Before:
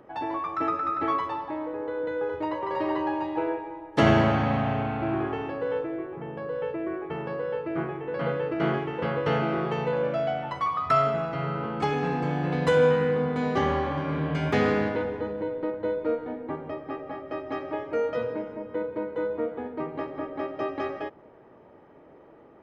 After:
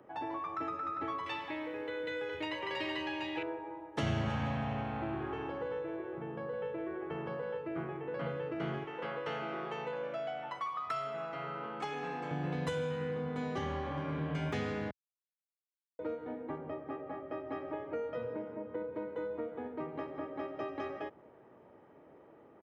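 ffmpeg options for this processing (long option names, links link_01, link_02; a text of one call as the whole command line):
ffmpeg -i in.wav -filter_complex "[0:a]asettb=1/sr,asplit=3[link_01][link_02][link_03];[link_01]atrim=end=1.264[link_04];[link_02]atrim=start=1.26:end=3.43,asetpts=PTS-STARTPTS,afade=type=in:duration=0.004:curve=qsin,afade=type=out:start_time=2.166:duration=0.004:curve=qsin,highshelf=frequency=1600:width_type=q:width=1.5:gain=13[link_05];[link_03]atrim=start=3.426[link_06];[link_04][link_05]acrossfade=duration=0.004:curve1=hsin:curve2=qsin[link_07];[link_07][link_06]acrossfade=duration=0.004:curve1=qsin:curve2=hsin,asplit=3[link_08][link_09][link_10];[link_08]afade=type=out:start_time=4.25:duration=0.02[link_11];[link_09]aecho=1:1:160|320|480|640|800|960:0.398|0.195|0.0956|0.0468|0.023|0.0112,afade=type=in:start_time=4.25:duration=0.02,afade=type=out:start_time=7.57:duration=0.02[link_12];[link_10]afade=type=in:start_time=7.57:duration=0.02[link_13];[link_11][link_12][link_13]amix=inputs=3:normalize=0,asettb=1/sr,asplit=3[link_14][link_15][link_16];[link_14]atrim=end=8.844[link_17];[link_15]atrim=start=8.84:end=12.31,asetpts=PTS-STARTPTS,afade=type=in:duration=0.004:curve=qsin,afade=type=out:start_time=3.466:duration=0.004:curve=qsin,highpass=frequency=570:poles=1[link_18];[link_16]atrim=start=12.306[link_19];[link_17][link_18]acrossfade=duration=0.004:curve1=hsin:curve2=qsin[link_20];[link_20][link_19]acrossfade=duration=0.004:curve1=qsin:curve2=hsin,asettb=1/sr,asplit=3[link_21][link_22][link_23];[link_21]atrim=end=16.584[link_24];[link_22]atrim=start=16.58:end=18.95,asetpts=PTS-STARTPTS,afade=type=in:duration=0.004:curve=qsin,afade=type=out:start_time=2.366:duration=0.004:curve=qsin,aemphasis=mode=reproduction:type=75fm[link_25];[link_23]atrim=start=18.946[link_26];[link_24][link_25]acrossfade=duration=0.004:curve1=hsin:curve2=qsin[link_27];[link_27][link_26]acrossfade=duration=0.004:curve1=qsin:curve2=hsin,asplit=3[link_28][link_29][link_30];[link_28]atrim=end=14.91,asetpts=PTS-STARTPTS,afade=type=out:start_time=14.906:duration=0.004:curve=hsin[link_31];[link_29]atrim=start=14.91:end=15.99,asetpts=PTS-STARTPTS,volume=0[link_32];[link_30]atrim=start=15.99,asetpts=PTS-STARTPTS,afade=type=in:duration=0.004:curve=hsin[link_33];[link_31][link_32][link_33]concat=n=3:v=0:a=1,highpass=63,acrossover=split=140|3000[link_34][link_35][link_36];[link_35]acompressor=threshold=-29dB:ratio=6[link_37];[link_34][link_37][link_36]amix=inputs=3:normalize=0,equalizer=frequency=4600:width_type=o:width=0.34:gain=-4.5,volume=-6dB" out.wav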